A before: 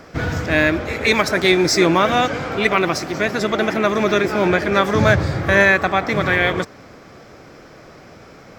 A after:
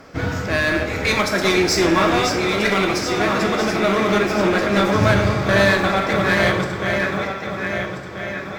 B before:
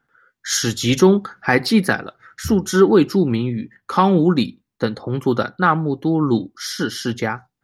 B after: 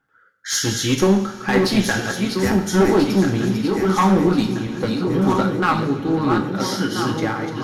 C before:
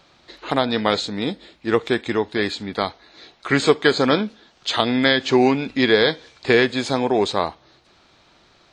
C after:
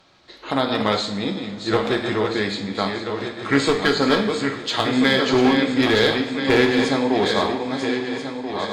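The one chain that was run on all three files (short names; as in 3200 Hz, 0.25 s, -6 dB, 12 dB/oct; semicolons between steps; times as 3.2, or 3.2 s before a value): regenerating reverse delay 0.667 s, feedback 63%, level -6 dB; one-sided clip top -13.5 dBFS; two-slope reverb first 0.53 s, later 3.6 s, from -18 dB, DRR 3 dB; gain -2.5 dB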